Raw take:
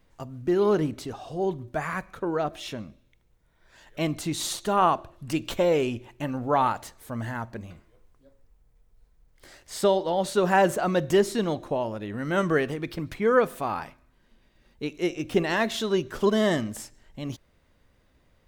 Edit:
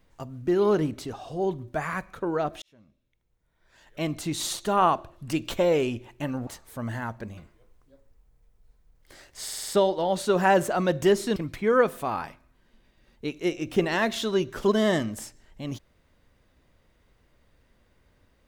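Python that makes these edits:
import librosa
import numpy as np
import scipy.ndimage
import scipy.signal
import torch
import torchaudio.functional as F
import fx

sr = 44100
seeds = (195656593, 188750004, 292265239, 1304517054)

y = fx.edit(x, sr, fx.fade_in_span(start_s=2.62, length_s=1.79),
    fx.cut(start_s=6.47, length_s=0.33),
    fx.stutter(start_s=9.76, slice_s=0.05, count=6),
    fx.cut(start_s=11.44, length_s=1.5), tone=tone)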